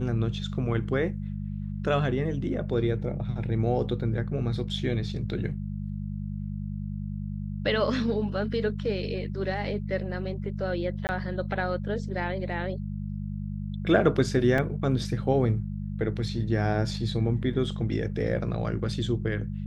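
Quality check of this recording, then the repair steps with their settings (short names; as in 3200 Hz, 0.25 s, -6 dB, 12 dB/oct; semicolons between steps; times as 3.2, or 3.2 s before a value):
hum 50 Hz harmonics 4 -33 dBFS
11.07–11.09 gap 19 ms
14.58 gap 2.2 ms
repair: de-hum 50 Hz, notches 4; interpolate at 11.07, 19 ms; interpolate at 14.58, 2.2 ms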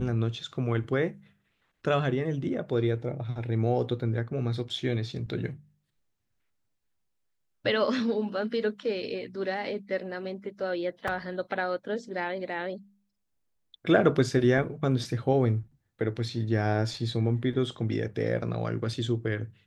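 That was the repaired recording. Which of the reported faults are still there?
none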